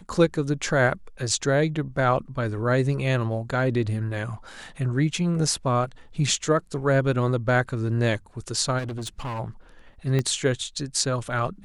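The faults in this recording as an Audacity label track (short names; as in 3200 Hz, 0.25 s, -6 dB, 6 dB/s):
8.780000	9.400000	clipped -28 dBFS
10.190000	10.190000	pop -13 dBFS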